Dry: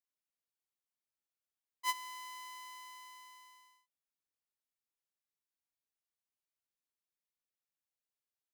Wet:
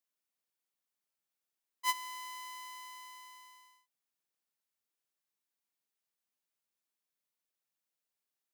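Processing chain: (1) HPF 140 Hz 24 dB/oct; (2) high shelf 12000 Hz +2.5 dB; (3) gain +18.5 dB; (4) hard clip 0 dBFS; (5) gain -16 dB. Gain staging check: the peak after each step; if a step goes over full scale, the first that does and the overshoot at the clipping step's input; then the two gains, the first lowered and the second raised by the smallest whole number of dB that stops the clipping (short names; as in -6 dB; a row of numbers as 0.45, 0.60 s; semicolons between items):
-22.0, -20.5, -2.0, -2.0, -18.0 dBFS; no overload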